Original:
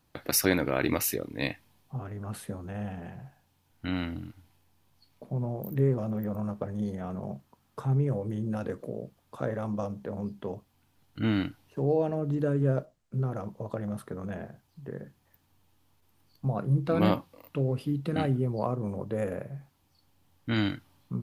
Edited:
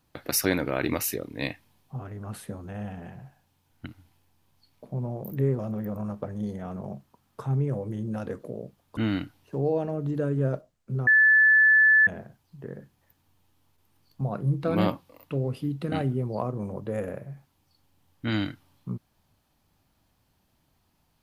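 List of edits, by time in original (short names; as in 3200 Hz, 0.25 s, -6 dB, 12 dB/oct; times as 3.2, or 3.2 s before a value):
3.86–4.25 cut
9.36–11.21 cut
13.31–14.31 bleep 1740 Hz -14.5 dBFS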